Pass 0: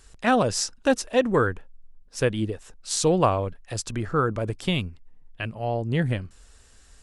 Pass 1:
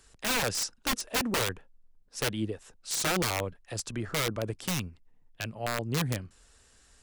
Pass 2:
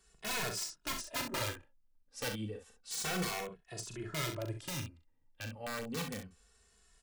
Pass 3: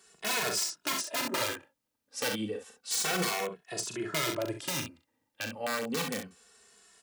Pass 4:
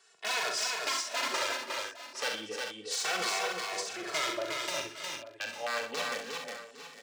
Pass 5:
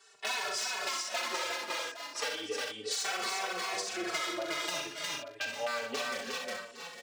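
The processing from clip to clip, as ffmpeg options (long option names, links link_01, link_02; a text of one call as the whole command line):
ffmpeg -i in.wav -filter_complex "[0:a]lowshelf=frequency=73:gain=-8.5,acrossover=split=150[link_01][link_02];[link_02]aeval=exprs='(mod(7.94*val(0)+1,2)-1)/7.94':channel_layout=same[link_03];[link_01][link_03]amix=inputs=2:normalize=0,volume=-4dB" out.wav
ffmpeg -i in.wav -filter_complex "[0:a]asplit=2[link_01][link_02];[link_02]aecho=0:1:39|65:0.447|0.376[link_03];[link_01][link_03]amix=inputs=2:normalize=0,asplit=2[link_04][link_05];[link_05]adelay=2.3,afreqshift=-0.3[link_06];[link_04][link_06]amix=inputs=2:normalize=1,volume=-5.5dB" out.wav
ffmpeg -i in.wav -af "highpass=220,alimiter=level_in=5dB:limit=-24dB:level=0:latency=1:release=55,volume=-5dB,volume=9dB" out.wav
ffmpeg -i in.wav -filter_complex "[0:a]acrossover=split=440 7200:gain=0.126 1 0.178[link_01][link_02][link_03];[link_01][link_02][link_03]amix=inputs=3:normalize=0,aecho=1:1:68|120|292|359|808|854:0.237|0.178|0.188|0.631|0.15|0.2" out.wav
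ffmpeg -i in.wav -filter_complex "[0:a]acompressor=threshold=-34dB:ratio=6,asplit=2[link_01][link_02];[link_02]adelay=4.6,afreqshift=-0.36[link_03];[link_01][link_03]amix=inputs=2:normalize=1,volume=6dB" out.wav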